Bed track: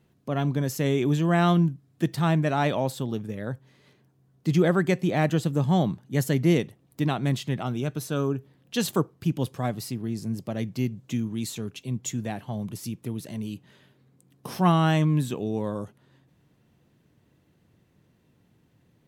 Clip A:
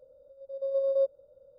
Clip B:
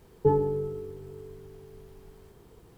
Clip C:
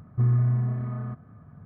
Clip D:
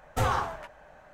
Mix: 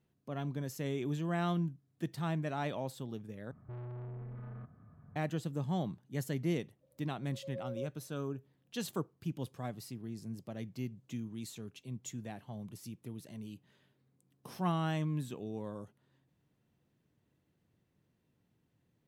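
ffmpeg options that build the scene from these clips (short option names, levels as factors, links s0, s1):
-filter_complex "[0:a]volume=0.237[s0];[3:a]asoftclip=type=tanh:threshold=0.0211[s1];[s0]asplit=2[s2][s3];[s2]atrim=end=3.514[s4];[s1]atrim=end=1.65,asetpts=PTS-STARTPTS,volume=0.355[s5];[s3]atrim=start=5.156[s6];[1:a]atrim=end=1.58,asetpts=PTS-STARTPTS,volume=0.15,afade=t=in:d=0.004:c=hsin,afade=t=out:st=1.576:d=0.004:c=hsin,adelay=6810[s7];[s4][s5]acrossfade=d=0.004:c1=hsin:c2=hsin[s8];[s8][s6]acrossfade=d=0.004:c1=hsin:c2=hsin[s9];[s9][s7]amix=inputs=2:normalize=0"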